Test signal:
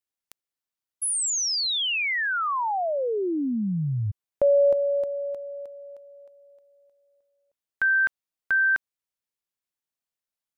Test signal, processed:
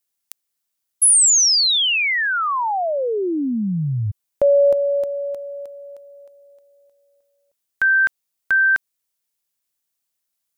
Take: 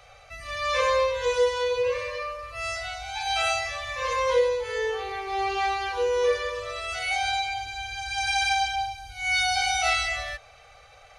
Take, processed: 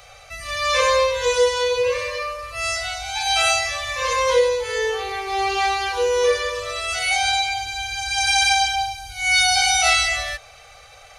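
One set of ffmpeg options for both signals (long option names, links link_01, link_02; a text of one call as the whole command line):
ffmpeg -i in.wav -af "highshelf=frequency=4600:gain=10.5,volume=4.5dB" out.wav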